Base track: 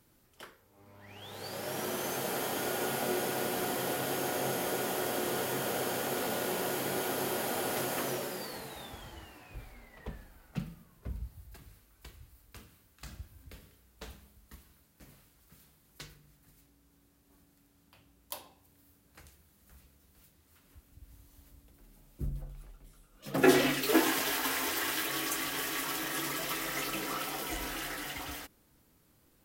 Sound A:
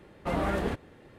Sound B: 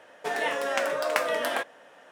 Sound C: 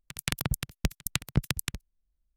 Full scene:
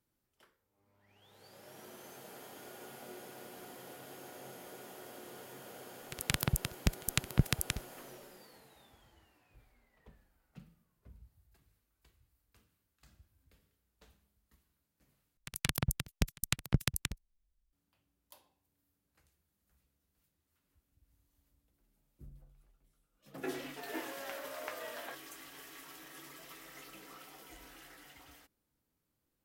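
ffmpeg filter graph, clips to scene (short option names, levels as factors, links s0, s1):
-filter_complex "[3:a]asplit=2[s0][s1];[0:a]volume=0.141[s2];[2:a]lowpass=4700[s3];[s2]asplit=2[s4][s5];[s4]atrim=end=15.374[s6];[s1]atrim=end=2.36,asetpts=PTS-STARTPTS,volume=0.708[s7];[s5]atrim=start=17.726[s8];[s0]atrim=end=2.36,asetpts=PTS-STARTPTS,volume=0.794,afade=t=in:d=0.004:c=hsin,afade=t=out:st=2.356:d=0.004:c=hsin,adelay=6020[s9];[s3]atrim=end=2.11,asetpts=PTS-STARTPTS,volume=0.133,afade=t=in:d=0.004:c=hsin,afade=t=out:st=2.106:d=0.004:c=hsin,adelay=23520[s10];[s6][s7]acrossfade=d=0.004:c1=hsin:c2=hsin[s11];[s11][s8]acrossfade=d=0.004:c1=hsin:c2=hsin[s12];[s12][s9][s10]amix=inputs=3:normalize=0"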